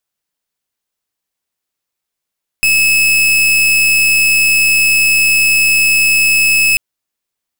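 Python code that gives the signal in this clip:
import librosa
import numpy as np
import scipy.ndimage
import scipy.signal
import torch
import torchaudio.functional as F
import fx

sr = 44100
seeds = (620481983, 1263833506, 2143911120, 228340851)

y = fx.pulse(sr, length_s=4.14, hz=2590.0, level_db=-10.5, duty_pct=40)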